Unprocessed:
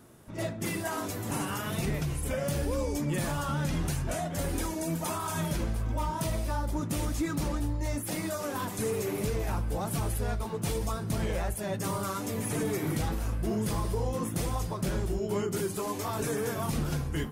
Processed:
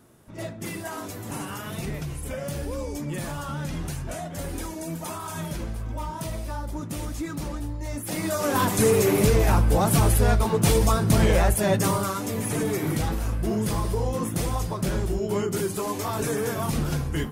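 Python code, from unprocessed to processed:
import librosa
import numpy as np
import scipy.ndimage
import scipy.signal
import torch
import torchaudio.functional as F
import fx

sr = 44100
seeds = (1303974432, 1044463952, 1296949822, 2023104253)

y = fx.gain(x, sr, db=fx.line((7.87, -1.0), (8.59, 11.5), (11.73, 11.5), (12.15, 4.5)))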